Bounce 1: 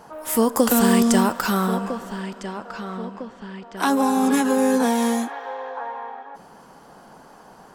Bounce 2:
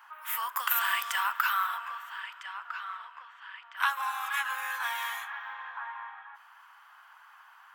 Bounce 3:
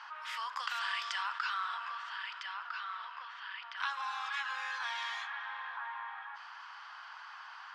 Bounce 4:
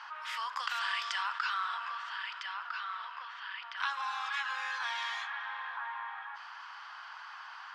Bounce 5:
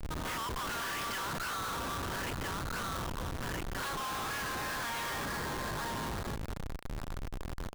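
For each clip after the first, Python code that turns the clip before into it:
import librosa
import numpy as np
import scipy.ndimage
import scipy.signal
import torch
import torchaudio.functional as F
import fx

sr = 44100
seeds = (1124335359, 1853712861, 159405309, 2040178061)

y1 = scipy.signal.sosfilt(scipy.signal.butter(6, 1100.0, 'highpass', fs=sr, output='sos'), x)
y1 = fx.band_shelf(y1, sr, hz=6800.0, db=-15.0, octaves=1.7)
y2 = fx.ladder_lowpass(y1, sr, hz=5400.0, resonance_pct=60)
y2 = fx.env_flatten(y2, sr, amount_pct=50)
y3 = fx.end_taper(y2, sr, db_per_s=350.0)
y3 = y3 * 10.0 ** (2.0 / 20.0)
y4 = fx.schmitt(y3, sr, flips_db=-39.5)
y4 = y4 * 10.0 ** (2.0 / 20.0)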